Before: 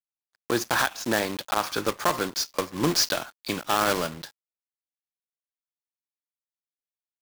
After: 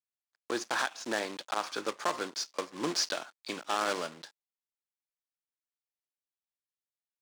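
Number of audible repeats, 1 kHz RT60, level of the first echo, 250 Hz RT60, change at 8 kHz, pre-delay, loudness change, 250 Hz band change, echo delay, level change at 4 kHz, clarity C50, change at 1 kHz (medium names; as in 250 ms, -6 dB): no echo, no reverb, no echo, no reverb, -8.0 dB, no reverb, -7.5 dB, -9.5 dB, no echo, -7.0 dB, no reverb, -7.0 dB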